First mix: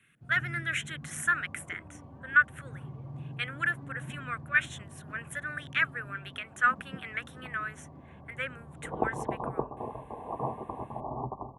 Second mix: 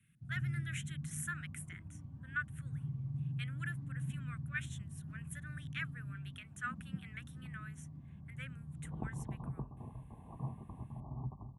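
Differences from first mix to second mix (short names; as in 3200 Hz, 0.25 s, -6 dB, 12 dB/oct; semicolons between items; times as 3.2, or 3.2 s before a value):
first sound: send +10.5 dB; master: add EQ curve 170 Hz 0 dB, 470 Hz -23 dB, 13000 Hz -3 dB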